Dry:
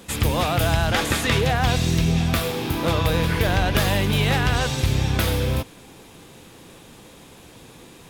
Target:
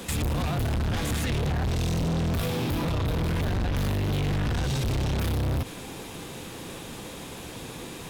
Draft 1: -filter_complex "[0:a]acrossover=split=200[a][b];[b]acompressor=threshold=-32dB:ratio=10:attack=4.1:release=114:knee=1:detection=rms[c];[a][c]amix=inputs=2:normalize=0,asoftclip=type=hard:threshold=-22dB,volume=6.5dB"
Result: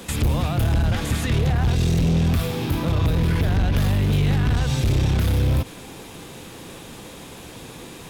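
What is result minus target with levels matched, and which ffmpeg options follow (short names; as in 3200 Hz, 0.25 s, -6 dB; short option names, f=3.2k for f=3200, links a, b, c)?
hard clip: distortion -6 dB
-filter_complex "[0:a]acrossover=split=200[a][b];[b]acompressor=threshold=-32dB:ratio=10:attack=4.1:release=114:knee=1:detection=rms[c];[a][c]amix=inputs=2:normalize=0,asoftclip=type=hard:threshold=-31dB,volume=6.5dB"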